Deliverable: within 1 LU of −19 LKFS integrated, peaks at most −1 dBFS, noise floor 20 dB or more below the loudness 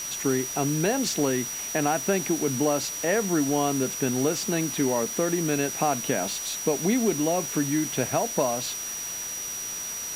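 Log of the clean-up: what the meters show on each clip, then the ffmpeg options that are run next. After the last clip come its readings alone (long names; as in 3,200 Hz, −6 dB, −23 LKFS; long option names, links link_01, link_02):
interfering tone 5,800 Hz; level of the tone −32 dBFS; background noise floor −34 dBFS; target noise floor −46 dBFS; integrated loudness −25.5 LKFS; sample peak −10.0 dBFS; target loudness −19.0 LKFS
→ -af "bandreject=frequency=5800:width=30"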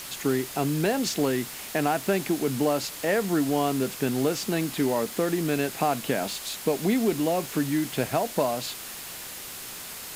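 interfering tone none found; background noise floor −39 dBFS; target noise floor −47 dBFS
→ -af "afftdn=noise_reduction=8:noise_floor=-39"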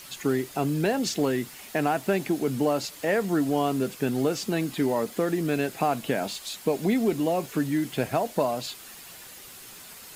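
background noise floor −45 dBFS; target noise floor −47 dBFS
→ -af "afftdn=noise_reduction=6:noise_floor=-45"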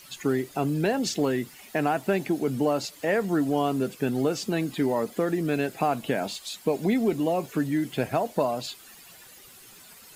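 background noise floor −50 dBFS; integrated loudness −27.0 LKFS; sample peak −11.5 dBFS; target loudness −19.0 LKFS
→ -af "volume=8dB"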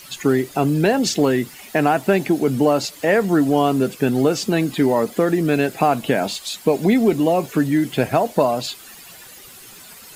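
integrated loudness −19.0 LKFS; sample peak −3.5 dBFS; background noise floor −42 dBFS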